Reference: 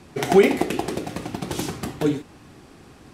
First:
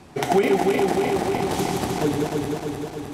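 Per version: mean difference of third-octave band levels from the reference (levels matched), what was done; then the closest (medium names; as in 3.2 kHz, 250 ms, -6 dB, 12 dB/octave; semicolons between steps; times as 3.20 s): 7.0 dB: backward echo that repeats 153 ms, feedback 79%, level -3 dB; peaking EQ 790 Hz +5 dB 0.7 oct; compression 2:1, threshold -19 dBFS, peak gain reduction 6.5 dB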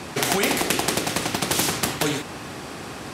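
11.0 dB: high-pass 110 Hz 12 dB/octave; loudness maximiser +10.5 dB; spectrum-flattening compressor 2:1; trim -1 dB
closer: first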